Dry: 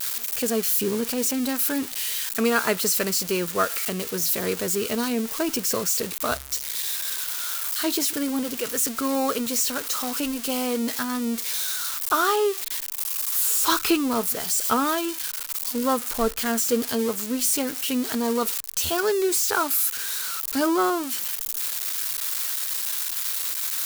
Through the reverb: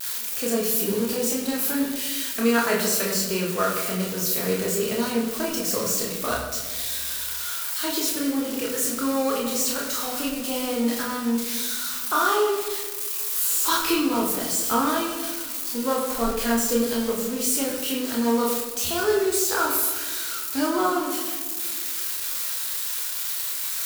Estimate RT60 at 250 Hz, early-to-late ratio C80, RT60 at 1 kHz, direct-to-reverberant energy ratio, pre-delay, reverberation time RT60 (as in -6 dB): 2.4 s, 5.5 dB, 1.3 s, -2.5 dB, 26 ms, 1.6 s